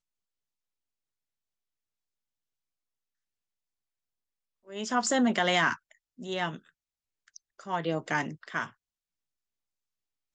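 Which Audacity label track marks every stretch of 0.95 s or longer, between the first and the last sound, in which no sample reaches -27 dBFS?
6.490000	7.700000	silence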